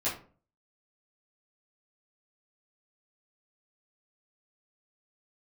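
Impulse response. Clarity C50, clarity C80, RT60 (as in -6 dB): 8.0 dB, 13.5 dB, 0.40 s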